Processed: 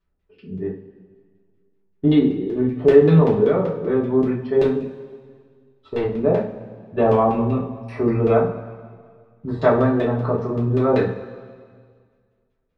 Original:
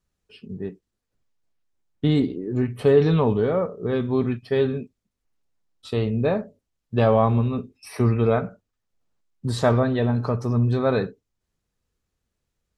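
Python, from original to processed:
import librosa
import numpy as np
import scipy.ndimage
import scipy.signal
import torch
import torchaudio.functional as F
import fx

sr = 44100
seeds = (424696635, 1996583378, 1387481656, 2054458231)

y = fx.overload_stage(x, sr, gain_db=20.5, at=(4.63, 6.03))
y = fx.filter_lfo_lowpass(y, sr, shape='saw_down', hz=5.2, low_hz=480.0, high_hz=3300.0, q=0.99)
y = fx.rev_double_slope(y, sr, seeds[0], early_s=0.32, late_s=1.9, knee_db=-17, drr_db=-5.0)
y = y * 10.0 ** (-2.0 / 20.0)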